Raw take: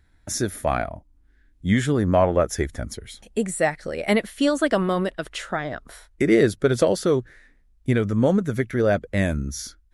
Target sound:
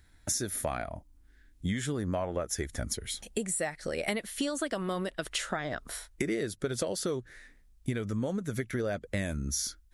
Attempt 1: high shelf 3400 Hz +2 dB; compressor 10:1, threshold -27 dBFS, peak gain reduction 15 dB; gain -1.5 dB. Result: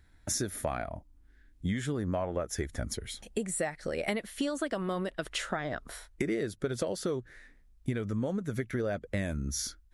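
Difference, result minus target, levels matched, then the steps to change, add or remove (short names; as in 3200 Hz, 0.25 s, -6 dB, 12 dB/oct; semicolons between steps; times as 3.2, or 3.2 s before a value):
8000 Hz band -2.5 dB
change: high shelf 3400 Hz +9.5 dB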